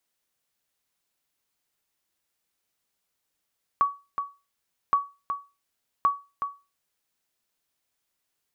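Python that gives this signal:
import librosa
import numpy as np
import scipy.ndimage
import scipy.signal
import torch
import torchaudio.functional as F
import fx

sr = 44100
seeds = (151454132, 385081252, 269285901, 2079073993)

y = fx.sonar_ping(sr, hz=1130.0, decay_s=0.28, every_s=1.12, pings=3, echo_s=0.37, echo_db=-8.0, level_db=-13.5)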